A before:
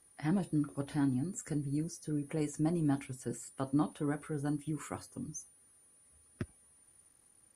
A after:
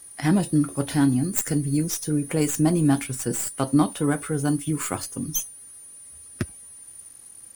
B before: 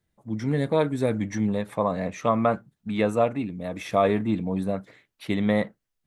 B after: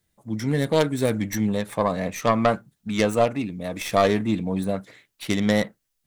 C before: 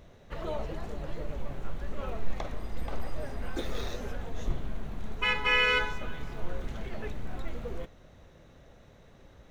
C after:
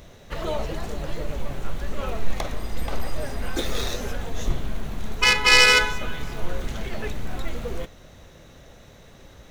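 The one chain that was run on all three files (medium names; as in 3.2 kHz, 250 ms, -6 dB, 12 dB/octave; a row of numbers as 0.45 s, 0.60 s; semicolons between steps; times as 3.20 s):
tracing distortion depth 0.089 ms; treble shelf 3.3 kHz +10 dB; normalise loudness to -24 LUFS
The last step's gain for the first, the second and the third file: +11.5 dB, +1.5 dB, +6.5 dB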